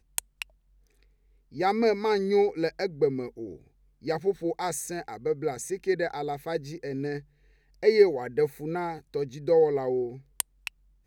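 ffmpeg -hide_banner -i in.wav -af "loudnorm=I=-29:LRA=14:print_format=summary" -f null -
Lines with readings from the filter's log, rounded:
Input Integrated:    -28.1 LUFS
Input True Peak:      -6.0 dBTP
Input LRA:             4.3 LU
Input Threshold:     -38.9 LUFS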